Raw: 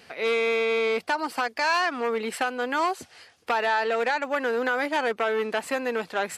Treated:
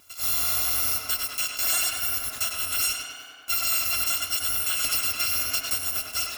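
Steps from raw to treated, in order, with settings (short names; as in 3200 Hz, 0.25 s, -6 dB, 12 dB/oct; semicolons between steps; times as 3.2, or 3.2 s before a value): FFT order left unsorted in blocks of 256 samples; in parallel at -10.5 dB: bit-crush 5-bit; on the sum: tape echo 99 ms, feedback 83%, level -3 dB, low-pass 4300 Hz; 4.84–5.77 three-band squash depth 100%; gain -3.5 dB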